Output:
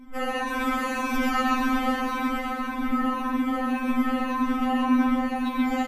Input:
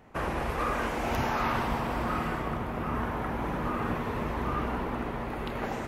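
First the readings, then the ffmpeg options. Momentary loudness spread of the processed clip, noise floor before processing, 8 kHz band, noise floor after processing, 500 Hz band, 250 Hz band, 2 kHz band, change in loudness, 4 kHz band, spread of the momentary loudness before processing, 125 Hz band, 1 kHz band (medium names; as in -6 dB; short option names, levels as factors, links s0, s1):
5 LU, -35 dBFS, +6.0 dB, -32 dBFS, 0.0 dB, +10.5 dB, +5.0 dB, +6.0 dB, +6.5 dB, 5 LU, under -15 dB, +4.5 dB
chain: -filter_complex "[0:a]afftfilt=real='re*pow(10,17/40*sin(2*PI*(1.6*log(max(b,1)*sr/1024/100)/log(2)-(-1.8)*(pts-256)/sr)))':imag='im*pow(10,17/40*sin(2*PI*(1.6*log(max(b,1)*sr/1024/100)/log(2)-(-1.8)*(pts-256)/sr)))':win_size=1024:overlap=0.75,lowshelf=f=250:t=q:w=3:g=12,bandreject=f=5100:w=13,alimiter=limit=0.299:level=0:latency=1:release=56,asplit=2[s0][s1];[s1]aecho=0:1:91|129|132|325|414|490:0.355|0.668|0.119|0.398|0.158|0.316[s2];[s0][s2]amix=inputs=2:normalize=0,afftfilt=real='re*3.46*eq(mod(b,12),0)':imag='im*3.46*eq(mod(b,12),0)':win_size=2048:overlap=0.75,volume=1.41"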